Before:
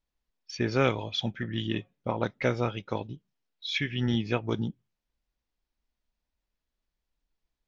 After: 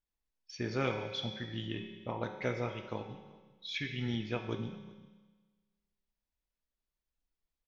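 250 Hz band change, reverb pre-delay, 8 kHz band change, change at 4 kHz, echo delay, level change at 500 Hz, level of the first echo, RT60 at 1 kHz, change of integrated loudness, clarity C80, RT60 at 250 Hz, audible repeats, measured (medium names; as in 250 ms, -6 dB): -8.0 dB, 5 ms, no reading, -7.0 dB, 385 ms, -7.5 dB, -23.0 dB, 1.4 s, -7.5 dB, 8.5 dB, 1.4 s, 1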